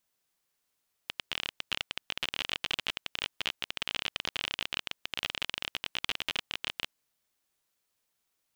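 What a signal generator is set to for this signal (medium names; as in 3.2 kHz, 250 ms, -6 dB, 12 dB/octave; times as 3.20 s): random clicks 29 per s -14 dBFS 5.87 s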